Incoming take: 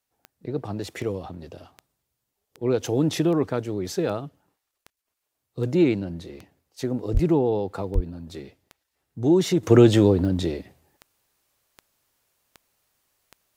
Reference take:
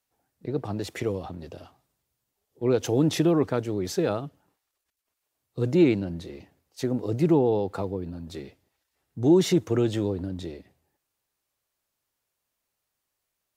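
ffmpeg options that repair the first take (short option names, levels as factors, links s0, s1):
-filter_complex "[0:a]adeclick=t=4,asplit=3[s0][s1][s2];[s0]afade=t=out:st=7.13:d=0.02[s3];[s1]highpass=f=140:w=0.5412,highpass=f=140:w=1.3066,afade=t=in:st=7.13:d=0.02,afade=t=out:st=7.25:d=0.02[s4];[s2]afade=t=in:st=7.25:d=0.02[s5];[s3][s4][s5]amix=inputs=3:normalize=0,asplit=3[s6][s7][s8];[s6]afade=t=out:st=7.94:d=0.02[s9];[s7]highpass=f=140:w=0.5412,highpass=f=140:w=1.3066,afade=t=in:st=7.94:d=0.02,afade=t=out:st=8.06:d=0.02[s10];[s8]afade=t=in:st=8.06:d=0.02[s11];[s9][s10][s11]amix=inputs=3:normalize=0,asetnsamples=n=441:p=0,asendcmd='9.63 volume volume -10dB',volume=1"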